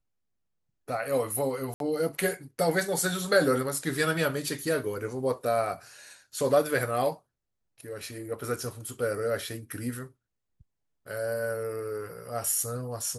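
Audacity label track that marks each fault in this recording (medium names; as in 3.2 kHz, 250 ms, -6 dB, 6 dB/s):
1.740000	1.800000	dropout 62 ms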